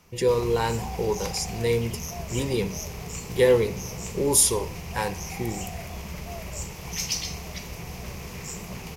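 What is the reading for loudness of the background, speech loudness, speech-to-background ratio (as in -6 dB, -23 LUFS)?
-34.5 LUFS, -25.0 LUFS, 9.5 dB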